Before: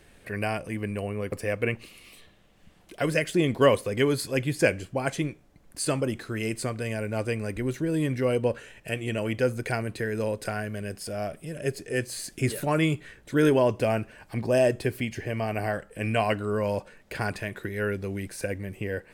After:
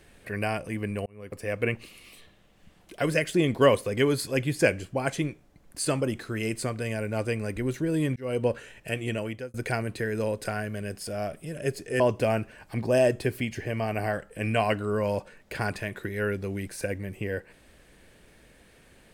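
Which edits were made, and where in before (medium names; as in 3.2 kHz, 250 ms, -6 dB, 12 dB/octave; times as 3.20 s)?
1.06–1.63 s: fade in
8.16–8.42 s: fade in
9.10–9.54 s: fade out linear
12.00–13.60 s: delete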